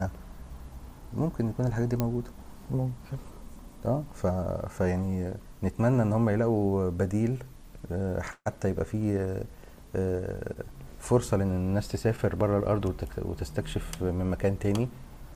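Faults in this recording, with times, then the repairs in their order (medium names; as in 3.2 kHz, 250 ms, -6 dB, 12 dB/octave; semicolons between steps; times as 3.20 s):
2.00 s: pop -13 dBFS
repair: de-click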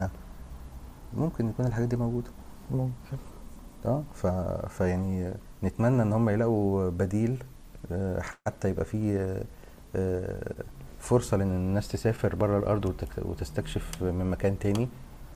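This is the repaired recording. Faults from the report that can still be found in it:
nothing left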